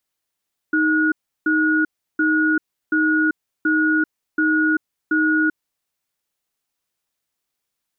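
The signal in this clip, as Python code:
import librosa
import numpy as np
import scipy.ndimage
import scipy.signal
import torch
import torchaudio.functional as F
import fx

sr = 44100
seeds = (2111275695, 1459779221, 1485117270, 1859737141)

y = fx.cadence(sr, length_s=4.78, low_hz=312.0, high_hz=1450.0, on_s=0.39, off_s=0.34, level_db=-17.5)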